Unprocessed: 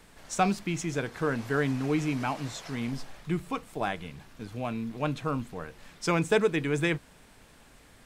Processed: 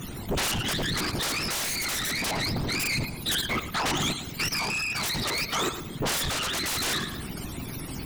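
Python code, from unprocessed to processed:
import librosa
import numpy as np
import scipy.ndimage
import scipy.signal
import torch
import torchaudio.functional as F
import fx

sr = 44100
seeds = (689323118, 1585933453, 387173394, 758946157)

p1 = fx.octave_mirror(x, sr, pivot_hz=760.0)
p2 = fx.high_shelf(p1, sr, hz=2400.0, db=7.0)
p3 = fx.level_steps(p2, sr, step_db=15)
p4 = np.clip(10.0 ** (35.0 / 20.0) * p3, -1.0, 1.0) / 10.0 ** (35.0 / 20.0)
p5 = fx.whisperise(p4, sr, seeds[0])
p6 = fx.peak_eq(p5, sr, hz=520.0, db=-6.0, octaves=0.55)
p7 = p6 + fx.echo_feedback(p6, sr, ms=111, feedback_pct=32, wet_db=-15, dry=0)
p8 = fx.fold_sine(p7, sr, drive_db=17, ceiling_db=-24.5)
y = fx.rider(p8, sr, range_db=4, speed_s=0.5)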